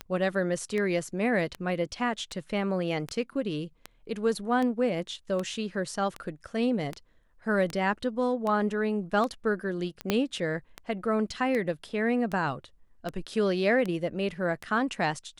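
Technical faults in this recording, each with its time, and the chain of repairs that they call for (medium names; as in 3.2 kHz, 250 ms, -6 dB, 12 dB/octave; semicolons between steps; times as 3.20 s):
tick 78 rpm -19 dBFS
10.10 s: pop -10 dBFS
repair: de-click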